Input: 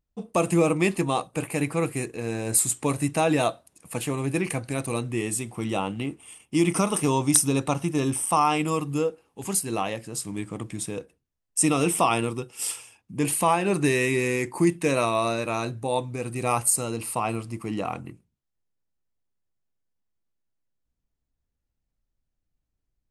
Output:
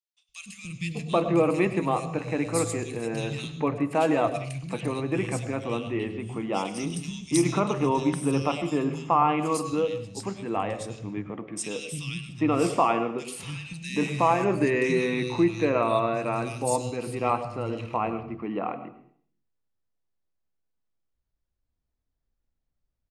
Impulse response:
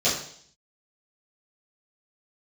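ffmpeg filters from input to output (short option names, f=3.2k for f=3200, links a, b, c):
-filter_complex "[0:a]lowpass=4.9k,acrossover=split=160|2700[a][b][c];[a]adelay=290[d];[b]adelay=780[e];[d][e][c]amix=inputs=3:normalize=0,asplit=2[f][g];[1:a]atrim=start_sample=2205,adelay=91[h];[g][h]afir=irnorm=-1:irlink=0,volume=-25.5dB[i];[f][i]amix=inputs=2:normalize=0"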